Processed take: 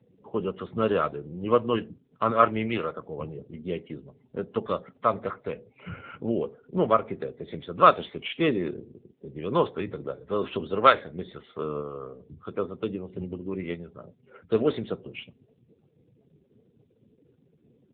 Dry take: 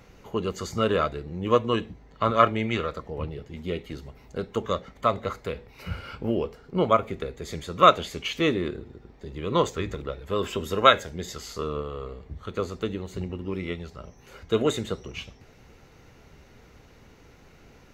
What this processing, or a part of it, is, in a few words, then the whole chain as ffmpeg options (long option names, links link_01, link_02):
mobile call with aggressive noise cancelling: -af "highpass=120,afftdn=noise_reduction=31:noise_floor=-46" -ar 8000 -c:a libopencore_amrnb -b:a 7950